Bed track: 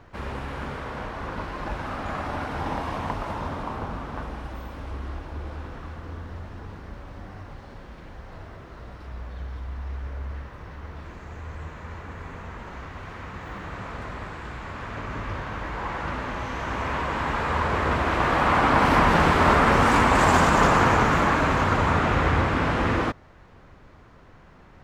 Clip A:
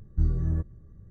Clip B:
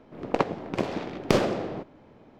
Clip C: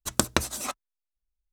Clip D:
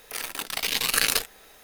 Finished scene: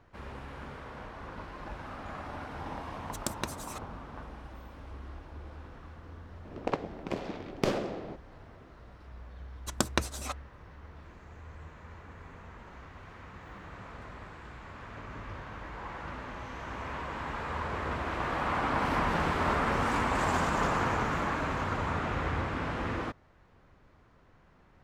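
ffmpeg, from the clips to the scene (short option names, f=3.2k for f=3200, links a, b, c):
-filter_complex "[3:a]asplit=2[a][b];[0:a]volume=-10.5dB[c];[b]highshelf=f=8.8k:g=-11[d];[a]atrim=end=1.52,asetpts=PTS-STARTPTS,volume=-12dB,afade=t=in:d=0.004:c=hsin,afade=t=out:st=1.516:d=0.004:c=hsin,adelay=3070[e];[2:a]atrim=end=2.39,asetpts=PTS-STARTPTS,volume=-7dB,afade=t=in:d=0.004:c=hsin,afade=t=out:st=2.386:d=0.004:c=hsin,adelay=6330[f];[d]atrim=end=1.52,asetpts=PTS-STARTPTS,volume=-4dB,afade=t=in:d=0.004:c=hsin,afade=t=out:st=1.516:d=0.004:c=hsin,adelay=9610[g];[c][e][f][g]amix=inputs=4:normalize=0"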